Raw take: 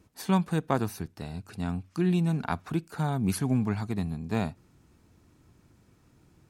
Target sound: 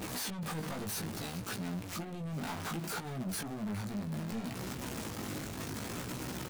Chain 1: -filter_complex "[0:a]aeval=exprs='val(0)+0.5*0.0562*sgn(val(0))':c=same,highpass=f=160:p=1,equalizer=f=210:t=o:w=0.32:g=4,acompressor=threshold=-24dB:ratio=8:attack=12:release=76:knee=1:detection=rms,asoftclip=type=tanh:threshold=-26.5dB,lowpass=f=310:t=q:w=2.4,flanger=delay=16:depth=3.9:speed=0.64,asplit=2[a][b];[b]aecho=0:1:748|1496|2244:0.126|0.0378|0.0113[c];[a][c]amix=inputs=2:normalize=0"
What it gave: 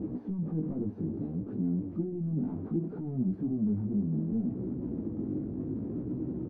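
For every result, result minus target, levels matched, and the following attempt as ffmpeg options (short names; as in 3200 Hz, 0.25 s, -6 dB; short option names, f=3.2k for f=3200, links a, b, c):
echo 0.332 s late; 250 Hz band +3.5 dB; soft clip: distortion -5 dB
-filter_complex "[0:a]aeval=exprs='val(0)+0.5*0.0562*sgn(val(0))':c=same,highpass=f=160:p=1,equalizer=f=210:t=o:w=0.32:g=4,acompressor=threshold=-24dB:ratio=8:attack=12:release=76:knee=1:detection=rms,asoftclip=type=tanh:threshold=-26.5dB,lowpass=f=310:t=q:w=2.4,flanger=delay=16:depth=3.9:speed=0.64,asplit=2[a][b];[b]aecho=0:1:416|832|1248:0.126|0.0378|0.0113[c];[a][c]amix=inputs=2:normalize=0"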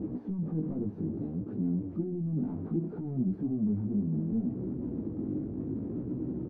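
250 Hz band +3.5 dB; soft clip: distortion -5 dB
-filter_complex "[0:a]aeval=exprs='val(0)+0.5*0.0562*sgn(val(0))':c=same,highpass=f=160:p=1,equalizer=f=210:t=o:w=0.32:g=4,acompressor=threshold=-24dB:ratio=8:attack=12:release=76:knee=1:detection=rms,asoftclip=type=tanh:threshold=-26.5dB,flanger=delay=16:depth=3.9:speed=0.64,asplit=2[a][b];[b]aecho=0:1:416|832|1248:0.126|0.0378|0.0113[c];[a][c]amix=inputs=2:normalize=0"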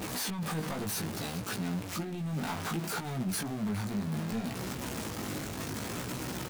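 soft clip: distortion -5 dB
-filter_complex "[0:a]aeval=exprs='val(0)+0.5*0.0562*sgn(val(0))':c=same,highpass=f=160:p=1,equalizer=f=210:t=o:w=0.32:g=4,acompressor=threshold=-24dB:ratio=8:attack=12:release=76:knee=1:detection=rms,asoftclip=type=tanh:threshold=-33dB,flanger=delay=16:depth=3.9:speed=0.64,asplit=2[a][b];[b]aecho=0:1:416|832|1248:0.126|0.0378|0.0113[c];[a][c]amix=inputs=2:normalize=0"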